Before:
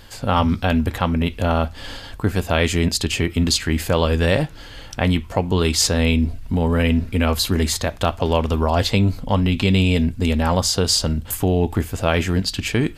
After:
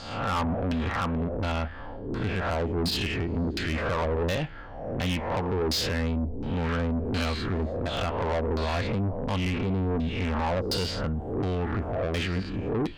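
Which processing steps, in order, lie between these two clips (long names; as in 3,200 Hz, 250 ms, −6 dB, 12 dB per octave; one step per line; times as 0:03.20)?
peak hold with a rise ahead of every peak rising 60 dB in 0.72 s
auto-filter low-pass saw down 1.4 Hz 340–4,700 Hz
soft clipping −17 dBFS, distortion −8 dB
level −6.5 dB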